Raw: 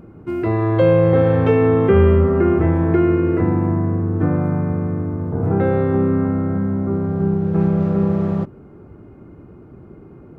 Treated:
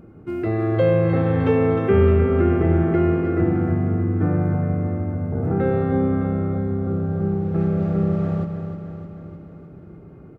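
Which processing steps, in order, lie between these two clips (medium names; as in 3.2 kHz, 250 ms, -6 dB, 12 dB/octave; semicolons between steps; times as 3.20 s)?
band-stop 990 Hz, Q 7.8; feedback delay 307 ms, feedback 60%, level -8 dB; reverberation RT60 0.55 s, pre-delay 86 ms, DRR 13.5 dB; trim -3.5 dB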